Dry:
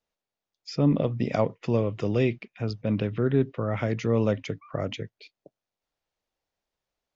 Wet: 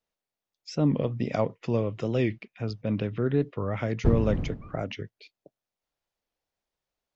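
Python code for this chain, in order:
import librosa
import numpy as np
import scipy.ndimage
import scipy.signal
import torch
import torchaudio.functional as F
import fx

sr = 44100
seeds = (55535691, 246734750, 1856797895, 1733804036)

y = fx.dmg_wind(x, sr, seeds[0], corner_hz=150.0, level_db=-22.0, at=(4.04, 4.85), fade=0.02)
y = fx.record_warp(y, sr, rpm=45.0, depth_cents=160.0)
y = y * 10.0 ** (-2.0 / 20.0)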